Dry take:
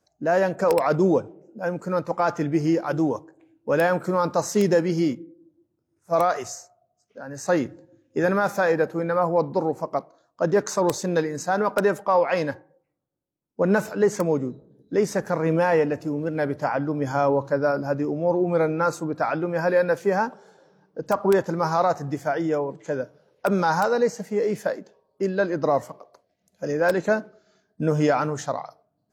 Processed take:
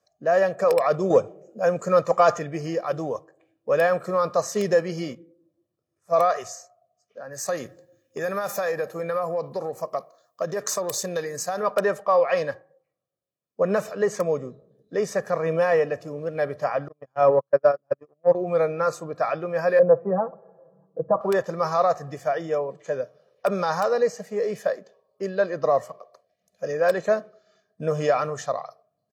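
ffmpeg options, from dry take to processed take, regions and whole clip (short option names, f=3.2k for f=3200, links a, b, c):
-filter_complex "[0:a]asettb=1/sr,asplit=3[a][b][c];[a]atrim=end=1.104[d];[b]atrim=start=1.1:end=2.39,asetpts=PTS-STARTPTS,afade=t=in:d=0.004:c=qsin,afade=t=out:st=1.286:d=0.004:c=qsin,equalizer=f=6.9k:w=4.1:g=9.5,acontrast=46[e];[c]atrim=start=2.386[f];[d][e]acrossfade=d=0.004:c1=hsin:c2=qsin[g];[g][f]acrossfade=d=0.004:c1=qsin:c2=hsin,asettb=1/sr,asplit=3[h][i][j];[h]atrim=end=7.324[k];[i]atrim=start=7.32:end=11.63,asetpts=PTS-STARTPTS,afade=t=in:d=0.004:c=qsin,afade=t=out:st=4.306:d=0.004:c=qsin,acompressor=threshold=-21dB:ratio=6:attack=3.2:release=140:knee=1:detection=peak,aemphasis=mode=production:type=50fm[l];[j]atrim=start=11.626[m];[k][l]acrossfade=d=0.004:c1=hsin:c2=qsin[n];[n][m]acrossfade=d=0.004:c1=qsin:c2=hsin,asettb=1/sr,asplit=3[o][p][q];[o]atrim=end=16.884[r];[p]atrim=start=16.88:end=18.35,asetpts=PTS-STARTPTS,afade=t=in:d=0.004:c=qsin,afade=t=out:st=1.466:d=0.004:c=qsin,agate=range=-46dB:threshold=-21dB:ratio=16:release=100:detection=peak,lowpass=f=2.5k:p=1,acontrast=39[s];[q]atrim=start=18.346[t];[r][s]acrossfade=d=0.004:c1=hsin:c2=qsin[u];[u][t]acrossfade=d=0.004:c1=qsin:c2=hsin,asettb=1/sr,asplit=3[v][w][x];[v]atrim=end=19.794[y];[w]atrim=start=19.79:end=21.21,asetpts=PTS-STARTPTS,afade=t=in:d=0.004:c=qsin,afade=t=out:st=1.416:d=0.004:c=qsin,lowpass=f=1k:w=0.5412,lowpass=f=1k:w=1.3066,lowshelf=f=200:g=5,aecho=1:1:6:0.92,atrim=end_sample=62622[z];[x]atrim=start=21.206[aa];[y][z]acrossfade=d=0.004:c1=hsin:c2=qsin[ab];[ab][aa]acrossfade=d=0.004:c1=qsin:c2=hsin,highpass=f=250:p=1,highshelf=f=6.7k:g=-4.5,aecho=1:1:1.7:0.63,volume=-1.5dB"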